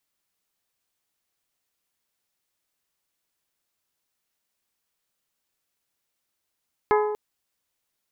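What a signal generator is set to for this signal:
struck glass bell, length 0.24 s, lowest mode 422 Hz, modes 6, decay 1.32 s, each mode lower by 3 dB, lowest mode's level −17 dB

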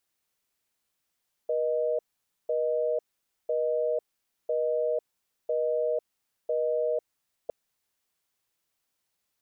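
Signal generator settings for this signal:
call progress tone busy tone, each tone −27 dBFS 6.01 s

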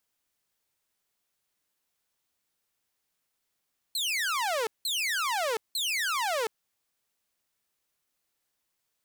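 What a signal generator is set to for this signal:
repeated falling chirps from 4,300 Hz, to 420 Hz, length 0.72 s saw, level −24 dB, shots 3, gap 0.18 s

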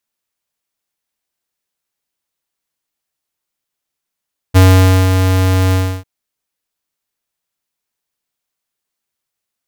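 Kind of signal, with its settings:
note with an ADSR envelope square 93.5 Hz, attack 25 ms, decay 510 ms, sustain −6.5 dB, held 1.19 s, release 308 ms −5 dBFS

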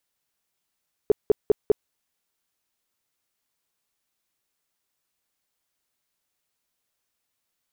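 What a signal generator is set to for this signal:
tone bursts 421 Hz, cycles 7, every 0.20 s, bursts 4, −12 dBFS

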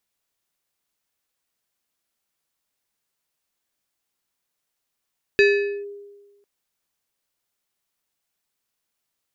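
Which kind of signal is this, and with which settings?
two-operator FM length 1.05 s, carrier 405 Hz, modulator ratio 5.3, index 0.96, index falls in 0.46 s linear, decay 1.30 s, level −10 dB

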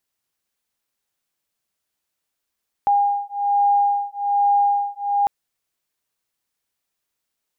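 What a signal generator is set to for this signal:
two tones that beat 810 Hz, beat 1.2 Hz, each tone −19 dBFS 2.40 s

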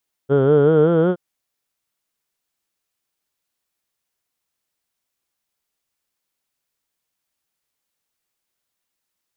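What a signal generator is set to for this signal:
vowel from formants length 0.87 s, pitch 133 Hz, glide +5 semitones, F1 450 Hz, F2 1,400 Hz, F3 3,200 Hz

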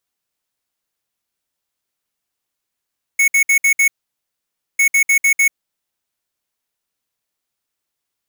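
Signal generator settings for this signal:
beeps in groups square 2,210 Hz, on 0.09 s, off 0.06 s, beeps 5, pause 0.91 s, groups 2, −12.5 dBFS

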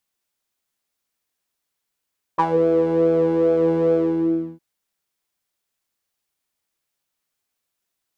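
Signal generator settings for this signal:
subtractive patch with pulse-width modulation E3, sub −15.5 dB, filter bandpass, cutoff 260 Hz, Q 5.7, filter envelope 2 octaves, filter decay 0.18 s, attack 18 ms, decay 0.06 s, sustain −5 dB, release 0.66 s, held 1.55 s, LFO 2.4 Hz, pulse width 22%, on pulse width 5%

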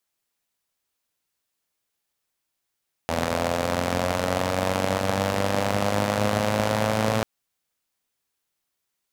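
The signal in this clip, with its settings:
pulse-train model of a four-cylinder engine, changing speed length 4.14 s, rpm 2,500, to 3,300, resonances 120/220/530 Hz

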